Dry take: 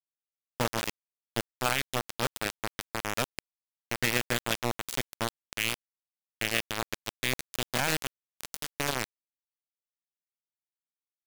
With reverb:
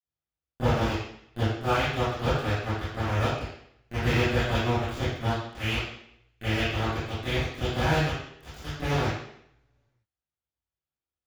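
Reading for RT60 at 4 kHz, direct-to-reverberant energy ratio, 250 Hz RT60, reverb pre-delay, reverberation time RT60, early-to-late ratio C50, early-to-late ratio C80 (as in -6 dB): 0.70 s, -19.0 dB, 0.75 s, 22 ms, 0.70 s, -3.0 dB, 1.5 dB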